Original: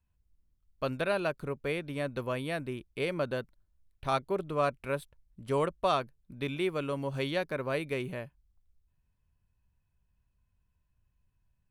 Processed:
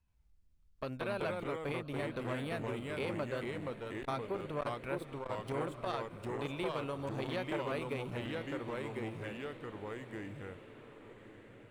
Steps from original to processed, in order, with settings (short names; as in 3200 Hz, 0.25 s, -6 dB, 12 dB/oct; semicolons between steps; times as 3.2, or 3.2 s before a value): median filter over 3 samples; compressor 2.5:1, threshold -36 dBFS, peak gain reduction 9 dB; echoes that change speed 83 ms, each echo -2 st, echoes 2; diffused feedback echo 1.213 s, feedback 47%, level -13 dB; core saturation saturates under 700 Hz